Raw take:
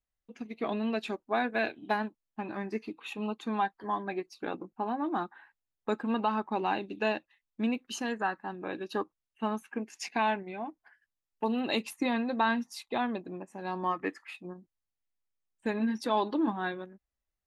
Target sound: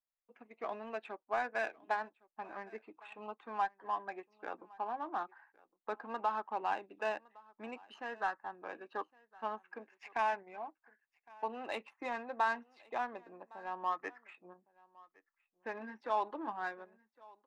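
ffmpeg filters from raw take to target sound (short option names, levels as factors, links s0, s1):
-filter_complex "[0:a]acrossover=split=520 2500:gain=0.1 1 0.178[s0][s1][s2];[s0][s1][s2]amix=inputs=3:normalize=0,adynamicsmooth=sensitivity=5.5:basefreq=2300,aecho=1:1:1111:0.0631,volume=0.75"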